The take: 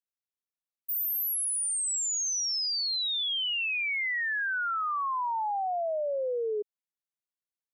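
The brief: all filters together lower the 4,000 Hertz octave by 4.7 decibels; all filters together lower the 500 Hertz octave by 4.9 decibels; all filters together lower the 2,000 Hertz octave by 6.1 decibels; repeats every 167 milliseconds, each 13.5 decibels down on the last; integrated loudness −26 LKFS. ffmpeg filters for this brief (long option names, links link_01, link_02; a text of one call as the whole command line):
ffmpeg -i in.wav -af "equalizer=frequency=500:width_type=o:gain=-5.5,equalizer=frequency=2000:width_type=o:gain=-6.5,equalizer=frequency=4000:width_type=o:gain=-4,aecho=1:1:167|334:0.211|0.0444,volume=4.5dB" out.wav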